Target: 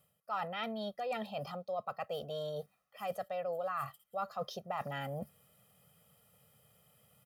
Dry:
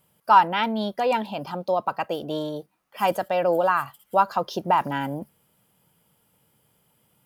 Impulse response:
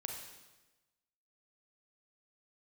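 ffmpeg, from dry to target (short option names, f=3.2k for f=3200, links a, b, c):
-af "highpass=55,aecho=1:1:1.6:0.92,areverse,acompressor=threshold=-34dB:ratio=4,areverse,volume=-4dB"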